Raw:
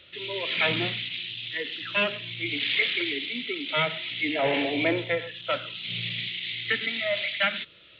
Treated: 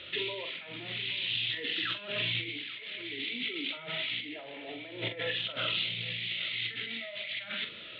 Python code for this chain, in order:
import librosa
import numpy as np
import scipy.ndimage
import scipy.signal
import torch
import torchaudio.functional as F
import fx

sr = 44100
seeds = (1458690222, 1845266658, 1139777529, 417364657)

y = scipy.signal.sosfilt(scipy.signal.butter(2, 4800.0, 'lowpass', fs=sr, output='sos'), x)
y = fx.low_shelf(y, sr, hz=83.0, db=-11.0)
y = fx.over_compress(y, sr, threshold_db=-39.0, ratio=-1.0)
y = fx.doubler(y, sr, ms=44.0, db=-8)
y = y + 10.0 ** (-17.0 / 20.0) * np.pad(y, (int(823 * sr / 1000.0), 0))[:len(y)]